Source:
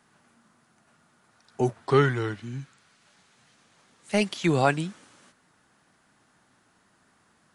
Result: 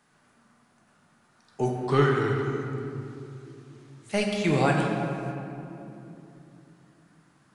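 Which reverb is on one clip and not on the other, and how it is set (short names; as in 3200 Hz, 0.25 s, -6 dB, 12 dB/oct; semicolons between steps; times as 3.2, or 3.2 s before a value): shoebox room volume 120 m³, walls hard, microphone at 0.41 m; gain -3 dB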